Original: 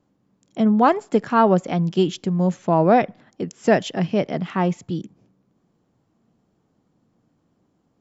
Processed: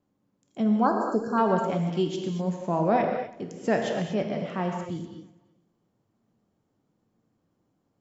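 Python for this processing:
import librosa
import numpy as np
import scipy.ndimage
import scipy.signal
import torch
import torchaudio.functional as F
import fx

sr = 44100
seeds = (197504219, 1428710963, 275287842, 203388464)

y = fx.brickwall_bandstop(x, sr, low_hz=1700.0, high_hz=4100.0, at=(0.69, 1.38))
y = fx.echo_feedback(y, sr, ms=335, feedback_pct=19, wet_db=-24)
y = fx.rev_gated(y, sr, seeds[0], gate_ms=270, shape='flat', drr_db=2.0)
y = y * 10.0 ** (-8.5 / 20.0)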